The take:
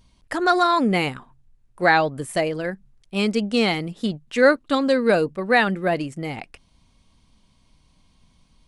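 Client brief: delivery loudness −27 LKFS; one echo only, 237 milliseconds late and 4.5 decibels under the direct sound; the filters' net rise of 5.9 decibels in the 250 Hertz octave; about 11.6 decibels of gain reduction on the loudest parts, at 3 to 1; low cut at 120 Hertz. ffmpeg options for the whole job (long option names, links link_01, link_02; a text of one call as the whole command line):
ffmpeg -i in.wav -af "highpass=120,equalizer=frequency=250:width_type=o:gain=7.5,acompressor=threshold=-24dB:ratio=3,aecho=1:1:237:0.596,volume=-1.5dB" out.wav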